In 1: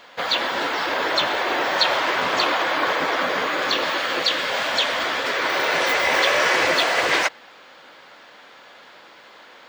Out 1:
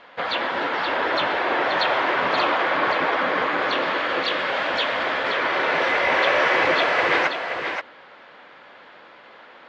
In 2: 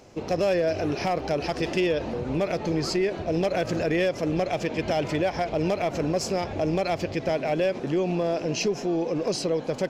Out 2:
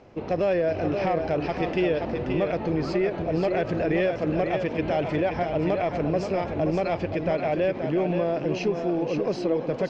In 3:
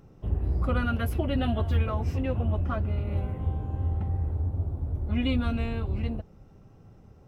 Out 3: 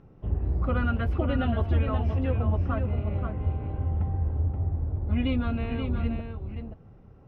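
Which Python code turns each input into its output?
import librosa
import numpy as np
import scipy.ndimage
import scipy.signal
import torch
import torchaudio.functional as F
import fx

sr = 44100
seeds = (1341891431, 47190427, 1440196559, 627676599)

y = scipy.signal.sosfilt(scipy.signal.butter(2, 2700.0, 'lowpass', fs=sr, output='sos'), x)
y = y + 10.0 ** (-6.5 / 20.0) * np.pad(y, (int(528 * sr / 1000.0), 0))[:len(y)]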